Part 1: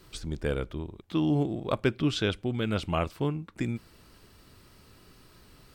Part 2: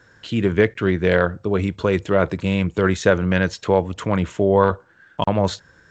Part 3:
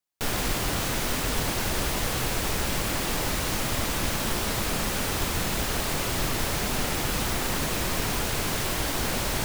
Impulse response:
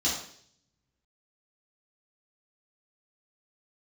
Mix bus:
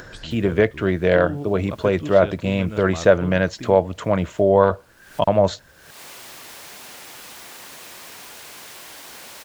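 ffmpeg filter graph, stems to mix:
-filter_complex "[0:a]highshelf=frequency=4000:gain=-10.5,volume=-4.5dB[link_01];[1:a]equalizer=frequency=630:width_type=o:width=0.43:gain=9.5,volume=-2dB,asplit=2[link_02][link_03];[2:a]highpass=frequency=840:poles=1,bandreject=frequency=1300:width=28,adelay=100,volume=-18dB[link_04];[link_03]apad=whole_len=420892[link_05];[link_04][link_05]sidechaincompress=threshold=-27dB:ratio=8:attack=20:release=506[link_06];[link_01][link_02][link_06]amix=inputs=3:normalize=0,acompressor=mode=upward:threshold=-30dB:ratio=2.5"

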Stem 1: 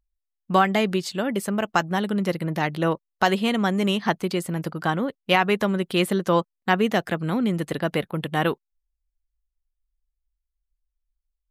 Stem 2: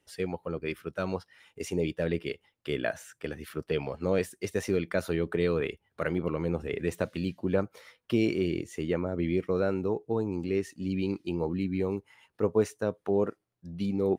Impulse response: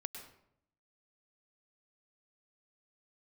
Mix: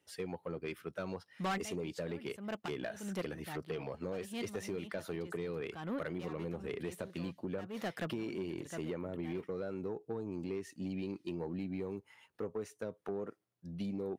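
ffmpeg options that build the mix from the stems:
-filter_complex "[0:a]asoftclip=type=tanh:threshold=-18.5dB,adelay=900,volume=-8dB[link_01];[1:a]acompressor=threshold=-30dB:ratio=12,volume=-3dB,asplit=2[link_02][link_03];[link_03]apad=whole_len=546972[link_04];[link_01][link_04]sidechaincompress=threshold=-53dB:ratio=10:attack=5.8:release=181[link_05];[link_05][link_02]amix=inputs=2:normalize=0,highpass=91,asoftclip=type=tanh:threshold=-30dB"

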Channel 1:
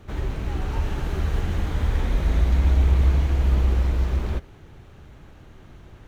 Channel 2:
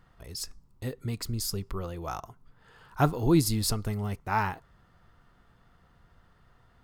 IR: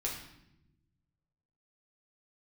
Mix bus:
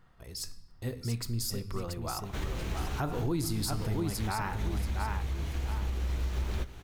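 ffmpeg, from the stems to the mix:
-filter_complex "[0:a]highshelf=frequency=2500:gain=11.5,acompressor=threshold=-25dB:ratio=12,adelay=2250,volume=-4.5dB,asplit=2[link_01][link_02];[link_02]volume=-18dB[link_03];[1:a]volume=-4.5dB,asplit=4[link_04][link_05][link_06][link_07];[link_05]volume=-9dB[link_08];[link_06]volume=-3.5dB[link_09];[link_07]apad=whole_len=367324[link_10];[link_01][link_10]sidechaincompress=threshold=-44dB:ratio=8:attack=16:release=106[link_11];[2:a]atrim=start_sample=2205[link_12];[link_03][link_08]amix=inputs=2:normalize=0[link_13];[link_13][link_12]afir=irnorm=-1:irlink=0[link_14];[link_09]aecho=0:1:682|1364|2046|2728:1|0.28|0.0784|0.022[link_15];[link_11][link_04][link_14][link_15]amix=inputs=4:normalize=0,alimiter=limit=-22.5dB:level=0:latency=1:release=74"

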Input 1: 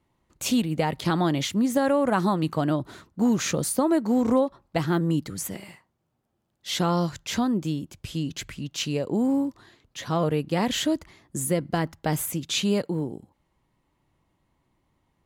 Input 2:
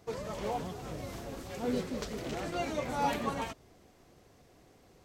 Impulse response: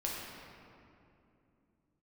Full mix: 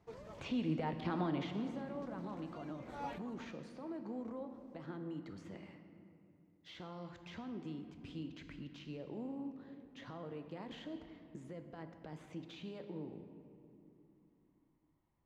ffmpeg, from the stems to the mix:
-filter_complex "[0:a]acrossover=split=240|6800[link_01][link_02][link_03];[link_01]acompressor=threshold=-40dB:ratio=4[link_04];[link_02]acompressor=threshold=-29dB:ratio=4[link_05];[link_03]acompressor=threshold=-46dB:ratio=4[link_06];[link_04][link_05][link_06]amix=inputs=3:normalize=0,alimiter=level_in=2dB:limit=-24dB:level=0:latency=1:release=143,volume=-2dB,adynamicsmooth=sensitivity=5.5:basefreq=4400,volume=-4.5dB,afade=type=out:start_time=1.16:duration=0.7:silence=0.316228,asplit=3[link_07][link_08][link_09];[link_08]volume=-6.5dB[link_10];[1:a]volume=-12.5dB[link_11];[link_09]apad=whole_len=222269[link_12];[link_11][link_12]sidechaincompress=threshold=-54dB:ratio=8:attack=8.1:release=187[link_13];[2:a]atrim=start_sample=2205[link_14];[link_10][link_14]afir=irnorm=-1:irlink=0[link_15];[link_07][link_13][link_15]amix=inputs=3:normalize=0,acrossover=split=3700[link_16][link_17];[link_17]acompressor=threshold=-58dB:ratio=4:attack=1:release=60[link_18];[link_16][link_18]amix=inputs=2:normalize=0,highshelf=frequency=5400:gain=-12"

